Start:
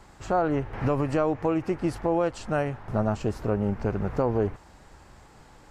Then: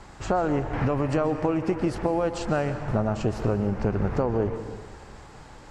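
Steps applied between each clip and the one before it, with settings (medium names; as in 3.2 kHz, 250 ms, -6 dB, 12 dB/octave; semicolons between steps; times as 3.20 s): low-pass 8.9 kHz 12 dB/octave; compression, threshold -26 dBFS, peak gain reduction 7 dB; on a send at -9.5 dB: reverberation RT60 1.7 s, pre-delay 111 ms; on the sum: trim +5.5 dB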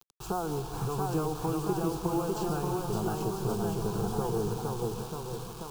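ever faster or slower copies 697 ms, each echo +1 st, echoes 3; word length cut 6-bit, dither none; static phaser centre 390 Hz, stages 8; trim -5 dB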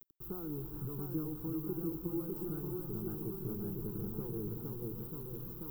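FFT filter 200 Hz 0 dB, 310 Hz +5 dB, 710 Hz -19 dB, 1.3 kHz -10 dB, 7.4 kHz -23 dB, 15 kHz +13 dB; reverse; upward compressor, threshold -28 dBFS; reverse; trim -8.5 dB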